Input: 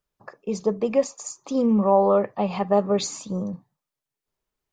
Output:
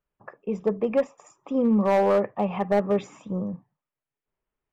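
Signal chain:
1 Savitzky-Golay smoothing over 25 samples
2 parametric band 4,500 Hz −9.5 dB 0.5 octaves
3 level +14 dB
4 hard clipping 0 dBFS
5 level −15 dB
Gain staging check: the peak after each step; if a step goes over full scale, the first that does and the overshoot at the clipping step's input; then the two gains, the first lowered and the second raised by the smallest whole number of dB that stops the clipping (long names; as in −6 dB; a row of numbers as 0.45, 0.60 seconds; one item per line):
−7.5, −7.5, +6.5, 0.0, −15.0 dBFS
step 3, 6.5 dB
step 3 +7 dB, step 5 −8 dB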